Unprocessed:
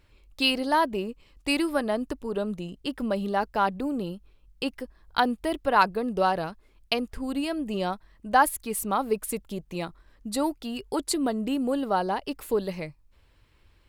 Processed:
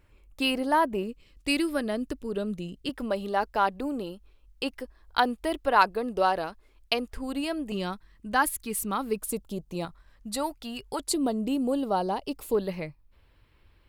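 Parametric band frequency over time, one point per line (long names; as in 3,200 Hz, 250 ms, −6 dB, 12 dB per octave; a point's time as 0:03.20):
parametric band −9 dB 0.97 octaves
4,200 Hz
from 0:01.03 890 Hz
from 0:02.89 160 Hz
from 0:07.72 670 Hz
from 0:09.20 2,000 Hz
from 0:09.85 340 Hz
from 0:11.08 1,700 Hz
from 0:12.55 7,000 Hz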